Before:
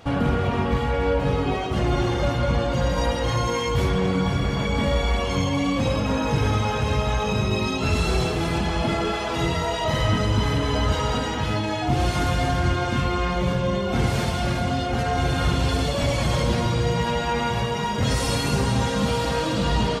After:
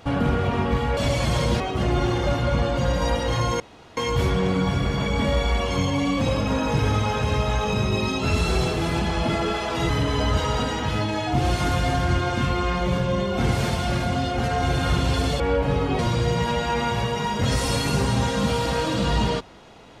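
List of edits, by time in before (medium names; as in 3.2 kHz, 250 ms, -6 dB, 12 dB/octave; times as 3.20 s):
0.97–1.56 s: swap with 15.95–16.58 s
3.56 s: insert room tone 0.37 s
9.48–10.44 s: delete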